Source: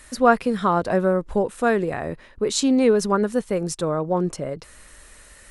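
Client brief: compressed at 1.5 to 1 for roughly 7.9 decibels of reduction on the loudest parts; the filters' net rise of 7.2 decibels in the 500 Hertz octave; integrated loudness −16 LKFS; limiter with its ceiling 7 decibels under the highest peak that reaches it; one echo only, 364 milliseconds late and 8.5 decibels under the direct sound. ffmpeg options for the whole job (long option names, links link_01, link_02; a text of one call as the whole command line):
ffmpeg -i in.wav -af "equalizer=frequency=500:width_type=o:gain=8.5,acompressor=threshold=-28dB:ratio=1.5,alimiter=limit=-15dB:level=0:latency=1,aecho=1:1:364:0.376,volume=8dB" out.wav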